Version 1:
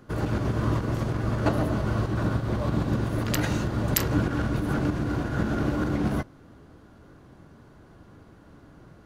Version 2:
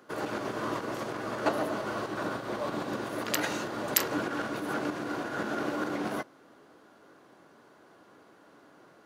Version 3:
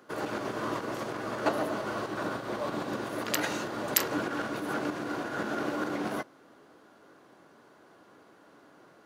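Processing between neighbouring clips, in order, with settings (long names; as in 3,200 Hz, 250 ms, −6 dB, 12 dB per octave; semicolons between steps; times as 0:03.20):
high-pass filter 390 Hz 12 dB per octave
floating-point word with a short mantissa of 6 bits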